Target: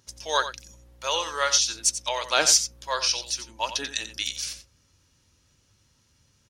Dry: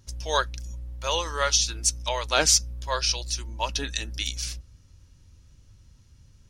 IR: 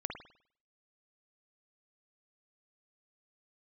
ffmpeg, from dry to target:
-af "highpass=f=430:p=1,aecho=1:1:89:0.266,volume=1.12"

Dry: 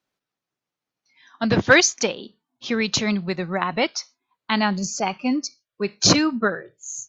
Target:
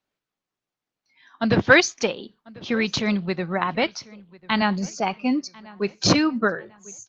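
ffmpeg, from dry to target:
-filter_complex "[0:a]lowpass=5200,asettb=1/sr,asplit=3[s0][s1][s2];[s0]atrim=end=3.834[s3];[s1]atrim=start=3.83:end=4.62,asetpts=PTS-STARTPTS,afade=t=in:d=0.004:c=qsin,afade=t=out:st=0.786:d=0.004:c=qsin,lowshelf=f=170:t=q:w=1.5:g=9.5[s4];[s2]atrim=start=4.616[s5];[s3][s4]acrossfade=d=0.004:c1=hsin:c2=qsin[s6];[s6][s5]acrossfade=d=0.004:c1=qsin:c2=hsin,asplit=2[s7][s8];[s8]adelay=1044,lowpass=f=3700:p=1,volume=0.0794,asplit=2[s9][s10];[s10]adelay=1044,lowpass=f=3700:p=1,volume=0.39,asplit=2[s11][s12];[s12]adelay=1044,lowpass=f=3700:p=1,volume=0.39[s13];[s7][s9][s11][s13]amix=inputs=4:normalize=0" -ar 48000 -c:a libopus -b:a 24k

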